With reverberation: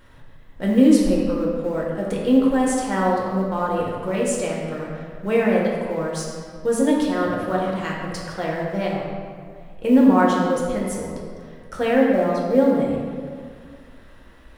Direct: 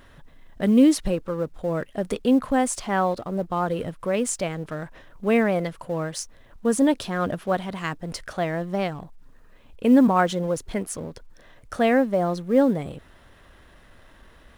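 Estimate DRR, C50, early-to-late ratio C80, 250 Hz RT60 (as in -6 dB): -3.5 dB, 0.5 dB, 2.5 dB, 2.2 s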